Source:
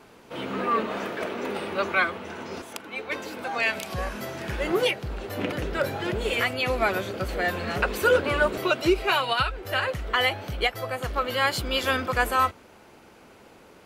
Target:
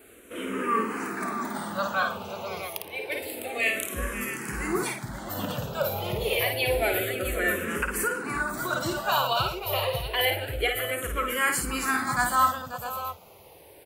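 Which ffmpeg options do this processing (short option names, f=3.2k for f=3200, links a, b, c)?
-filter_complex "[0:a]asettb=1/sr,asplit=3[a][b][c];[a]atrim=end=3.174[d];[b]atrim=start=3.17:end=3.77,asetpts=PTS-STARTPTS,afade=t=in:d=0.004:c=qsin,afade=t=out:st=0.596:d=0.004:c=qsin,asuperstop=centerf=1500:order=4:qfactor=3.5[e];[c]atrim=start=3.766[f];[d][e]acrossfade=d=0.004:c1=hsin:c2=qsin[g];[g][f]acrossfade=d=0.004:c1=qsin:c2=hsin,asettb=1/sr,asplit=3[h][i][j];[h]atrim=end=10.254[k];[i]atrim=start=10.25:end=10.69,asetpts=PTS-STARTPTS,afade=t=in:d=0.004:c=qsin,afade=t=out:st=0.436:d=0.004:c=qsin,highshelf=f=4.3k:g=-8[l];[j]atrim=start=10.686[m];[k][l]acrossfade=d=0.004:c1=hsin:c2=qsin[n];[n][m]acrossfade=d=0.004:c1=qsin:c2=hsin,aecho=1:1:53|115|537|654:0.562|0.126|0.266|0.335,asettb=1/sr,asplit=3[o][p][q];[o]atrim=end=7.804[r];[p]atrim=start=7.8:end=8.73,asetpts=PTS-STARTPTS,afade=t=in:d=0.004:c=qsin,afade=t=out:st=0.926:d=0.004:c=qsin,acompressor=threshold=-23dB:ratio=4[s];[q]atrim=start=8.726[t];[r][s]acrossfade=d=0.004:c1=hsin:c2=qsin[u];[u][t]acrossfade=d=0.004:c1=qsin:c2=hsin,aexciter=amount=2.2:drive=9.3:freq=7.6k,asplit=2[v][w];[w]afreqshift=-0.28[x];[v][x]amix=inputs=2:normalize=1"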